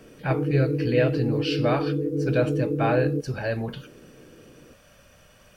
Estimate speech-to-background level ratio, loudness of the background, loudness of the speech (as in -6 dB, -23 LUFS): 0.0 dB, -27.0 LUFS, -27.0 LUFS